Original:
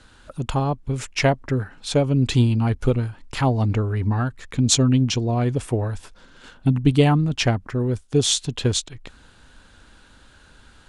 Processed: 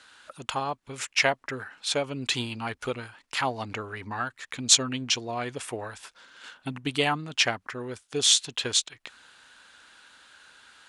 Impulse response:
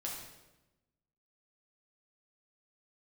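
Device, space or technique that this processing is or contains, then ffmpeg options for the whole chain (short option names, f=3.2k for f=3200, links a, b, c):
filter by subtraction: -filter_complex "[0:a]asplit=2[a][b];[b]lowpass=1.8k,volume=-1[c];[a][c]amix=inputs=2:normalize=0"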